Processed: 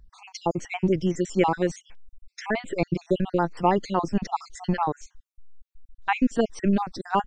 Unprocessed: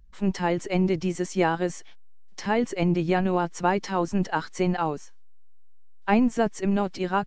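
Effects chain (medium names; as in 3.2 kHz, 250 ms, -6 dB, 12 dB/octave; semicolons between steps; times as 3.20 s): random holes in the spectrogram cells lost 51%; trim +2.5 dB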